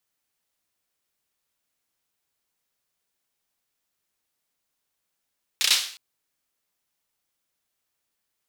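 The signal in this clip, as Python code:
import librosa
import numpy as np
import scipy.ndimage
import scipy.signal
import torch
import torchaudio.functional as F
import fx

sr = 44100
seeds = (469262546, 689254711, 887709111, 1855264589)

y = fx.drum_clap(sr, seeds[0], length_s=0.36, bursts=4, spacing_ms=32, hz=3700.0, decay_s=0.48)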